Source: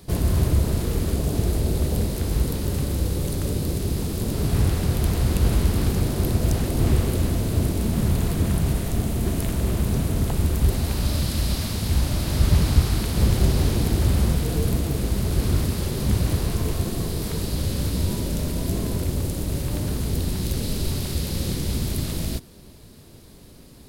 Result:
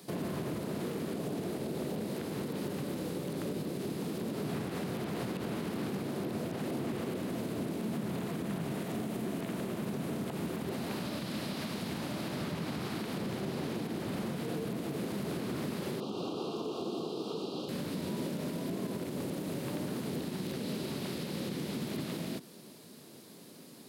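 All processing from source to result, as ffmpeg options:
ffmpeg -i in.wav -filter_complex "[0:a]asettb=1/sr,asplit=3[link_01][link_02][link_03];[link_01]atrim=end=16.004[link_04];[link_02]atrim=start=16:end=17.69,asetpts=PTS-STARTPTS,afade=type=in:duration=0.004:curve=qsin,afade=type=out:start_time=1.686:duration=0.004:curve=qsin,asuperstop=centerf=1900:order=8:qfactor=1.4,acrossover=split=180 4800:gain=0.158 1 0.0708[link_05][link_06][link_07];[link_05][link_06][link_07]amix=inputs=3:normalize=0,aecho=1:1:2.5:0.3,atrim=end_sample=74529[link_08];[link_03]atrim=start=17.686[link_09];[link_04][link_08]acrossfade=duration=0.004:curve1=hsin:curve2=qsin[link_10];[link_10][link_09]acrossfade=duration=0.004:curve1=qsin:curve2=hsin,acrossover=split=3400[link_11][link_12];[link_12]acompressor=threshold=-45dB:ratio=4:attack=1:release=60[link_13];[link_11][link_13]amix=inputs=2:normalize=0,highpass=frequency=170:width=0.5412,highpass=frequency=170:width=1.3066,alimiter=level_in=1dB:limit=-24dB:level=0:latency=1:release=112,volume=-1dB,volume=-2.5dB" out.wav

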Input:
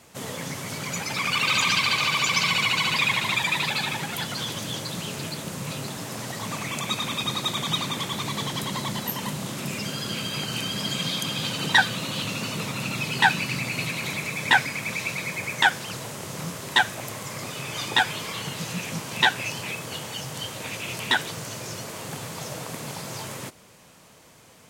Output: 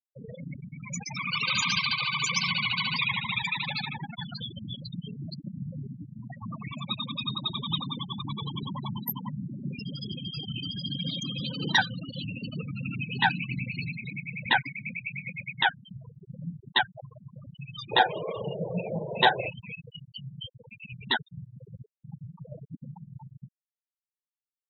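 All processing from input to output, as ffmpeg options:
ffmpeg -i in.wav -filter_complex "[0:a]asettb=1/sr,asplit=3[link_01][link_02][link_03];[link_01]atrim=end=11.024[link_04];[link_02]atrim=start=11.02:end=11.74,asetpts=PTS-STARTPTS,afade=type=in:duration=0.004:curve=qsin,afade=type=out:start_time=0.716:duration=0.004:curve=qsin,equalizer=frequency=380:width=0.41:gain=2.5,bandreject=frequency=60:width_type=h:width=6,bandreject=frequency=120:width_type=h:width=6,bandreject=frequency=180:width_type=h:width=6,bandreject=frequency=240:width_type=h:width=6,bandreject=frequency=300:width_type=h:width=6,bandreject=frequency=360:width_type=h:width=6,bandreject=frequency=420:width_type=h:width=6,bandreject=frequency=480:width_type=h:width=6,bandreject=frequency=540:width_type=h:width=6,bandreject=frequency=600:width_type=h:width=6[link_05];[link_03]atrim=start=11.736[link_06];[link_04][link_05]acrossfade=duration=0.004:curve1=hsin:curve2=qsin[link_07];[link_07][link_06]acrossfade=duration=0.004:curve1=qsin:curve2=hsin,asettb=1/sr,asplit=3[link_08][link_09][link_10];[link_08]atrim=end=17.934[link_11];[link_09]atrim=start=17.93:end=19.49,asetpts=PTS-STARTPTS,afade=type=in:duration=0.004:curve=qsin,afade=type=out:start_time=1.556:duration=0.004:curve=qsin,equalizer=frequency=540:width_type=o:width=1.4:gain=12.5,bandreject=frequency=250:width=6.4,asplit=2[link_12][link_13];[link_13]adelay=39,volume=-11dB[link_14];[link_12][link_14]amix=inputs=2:normalize=0,atrim=end_sample=68796[link_15];[link_10]atrim=start=19.486[link_16];[link_11][link_15]acrossfade=duration=0.004:curve1=hsin:curve2=qsin[link_17];[link_17][link_16]acrossfade=duration=0.004:curve1=qsin:curve2=hsin,bandreject=frequency=51.21:width_type=h:width=4,bandreject=frequency=102.42:width_type=h:width=4,bandreject=frequency=153.63:width_type=h:width=4,bandreject=frequency=204.84:width_type=h:width=4,bandreject=frequency=256.05:width_type=h:width=4,bandreject=frequency=307.26:width_type=h:width=4,bandreject=frequency=358.47:width_type=h:width=4,afftfilt=real='re*gte(hypot(re,im),0.0891)':imag='im*gte(hypot(re,im),0.0891)':win_size=1024:overlap=0.75,equalizer=frequency=1500:width_type=o:width=2.6:gain=-6" out.wav

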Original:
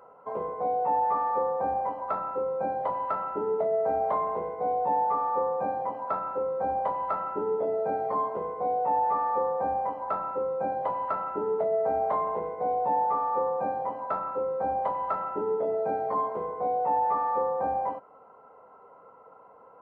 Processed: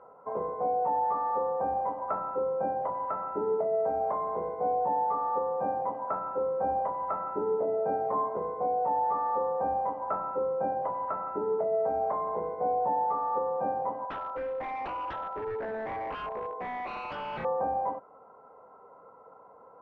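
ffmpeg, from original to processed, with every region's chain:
ffmpeg -i in.wav -filter_complex "[0:a]asettb=1/sr,asplit=3[link_01][link_02][link_03];[link_01]atrim=end=14.054[link_04];[link_02]atrim=start=14.05:end=17.45,asetpts=PTS-STARTPTS,afade=type=in:duration=0.004:curve=qsin,afade=type=out:start_time=3.396:duration=0.004:curve=qsin,bandpass=frequency=840:width_type=q:width=0.92,aeval=exprs='0.0335*(abs(mod(val(0)/0.0335+3,4)-2)-1)':channel_layout=same[link_05];[link_03]atrim=start=17.446[link_06];[link_04][link_05]acrossfade=duration=0.004:curve1=hsin:curve2=qsin[link_07];[link_07][link_06]acrossfade=duration=0.004:curve1=qsin:curve2=hsin,lowpass=1600,alimiter=limit=-20dB:level=0:latency=1:release=336" out.wav

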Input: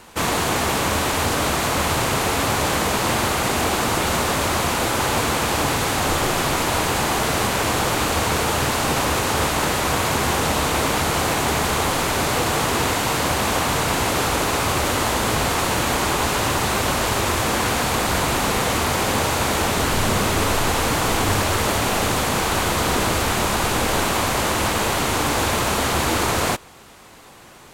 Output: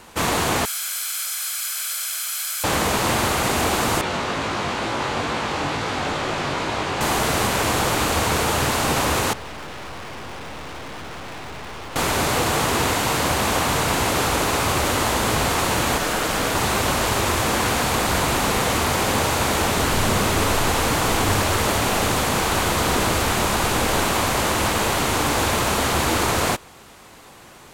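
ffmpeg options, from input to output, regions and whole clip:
ffmpeg -i in.wav -filter_complex "[0:a]asettb=1/sr,asplit=3[link_01][link_02][link_03];[link_01]atrim=end=0.654[link_04];[link_02]atrim=start=0.65:end=2.64,asetpts=PTS-STARTPTS,afade=type=in:duration=0.004:curve=qsin,afade=type=out:start_time=1.986:duration=0.004:curve=qsin,aderivative,aecho=1:1:1.1:0.56,atrim=end_sample=87759,afreqshift=490[link_05];[link_03]atrim=start=2.636[link_06];[link_04][link_05]acrossfade=duration=0.004:curve1=hsin:curve2=qsin[link_07];[link_07][link_06]acrossfade=duration=0.004:curve1=qsin:curve2=hsin,asettb=1/sr,asplit=3[link_08][link_09][link_10];[link_08]atrim=end=4.014[link_11];[link_09]atrim=start=4.01:end=7.01,asetpts=PTS-STARTPTS,afade=type=in:duration=0.004:curve=qsin,afade=type=out:start_time=2.996:duration=0.004:curve=qsin,lowshelf=frequency=63:gain=-9.5,flanger=delay=18:depth=3.5:speed=2.2,lowpass=4800[link_12];[link_10]atrim=start=7.006[link_13];[link_11][link_12]acrossfade=duration=0.004:curve1=hsin:curve2=qsin[link_14];[link_14][link_13]acrossfade=duration=0.004:curve1=qsin:curve2=hsin,asettb=1/sr,asplit=3[link_15][link_16][link_17];[link_15]atrim=end=9.334[link_18];[link_16]atrim=start=9.33:end=11.96,asetpts=PTS-STARTPTS,afade=type=in:duration=0.004:curve=qsin,afade=type=out:start_time=2.626:duration=0.004:curve=qsin,lowpass=frequency=3300:width=0.5412,lowpass=frequency=3300:width=1.3066,aeval=exprs='(tanh(50.1*val(0)+0.75)-tanh(0.75))/50.1':channel_layout=same[link_19];[link_17]atrim=start=11.956[link_20];[link_18][link_19]acrossfade=duration=0.004:curve1=hsin:curve2=qsin[link_21];[link_21][link_20]acrossfade=duration=0.004:curve1=qsin:curve2=hsin,asettb=1/sr,asplit=3[link_22][link_23][link_24];[link_22]atrim=end=15.984[link_25];[link_23]atrim=start=15.98:end=16.55,asetpts=PTS-STARTPTS,afade=type=in:duration=0.004:curve=qsin,afade=type=out:start_time=0.566:duration=0.004:curve=qsin,asplit=2[link_26][link_27];[link_27]adelay=19,volume=-4dB[link_28];[link_26][link_28]amix=inputs=2:normalize=0,atrim=end_sample=25137,acrusher=bits=8:dc=4:mix=0:aa=0.000001,aeval=exprs='val(0)*sin(2*PI*380*n/s)':channel_layout=same[link_29];[link_24]atrim=start=16.546[link_30];[link_25][link_29]acrossfade=duration=0.004:curve1=hsin:curve2=qsin[link_31];[link_31][link_30]acrossfade=duration=0.004:curve1=qsin:curve2=hsin" out.wav

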